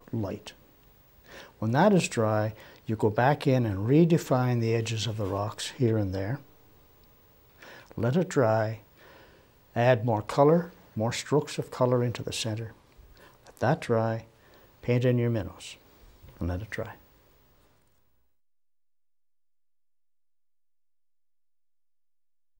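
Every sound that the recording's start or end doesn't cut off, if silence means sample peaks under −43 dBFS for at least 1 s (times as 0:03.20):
0:07.61–0:16.95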